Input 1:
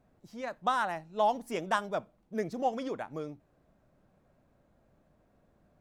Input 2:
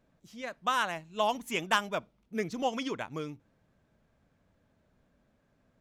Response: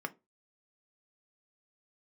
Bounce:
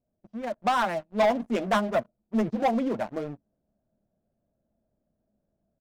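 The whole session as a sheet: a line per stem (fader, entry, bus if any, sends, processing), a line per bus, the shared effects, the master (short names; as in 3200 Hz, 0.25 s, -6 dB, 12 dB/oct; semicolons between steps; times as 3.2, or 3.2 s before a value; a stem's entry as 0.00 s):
-8.5 dB, 0.00 s, send -17.5 dB, Wiener smoothing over 41 samples
-1.0 dB, 6 ms, polarity flipped, send -19 dB, double band-pass 370 Hz, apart 1.6 oct; wow and flutter 26 cents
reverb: on, RT60 0.25 s, pre-delay 3 ms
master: sample leveller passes 3; AGC gain up to 4 dB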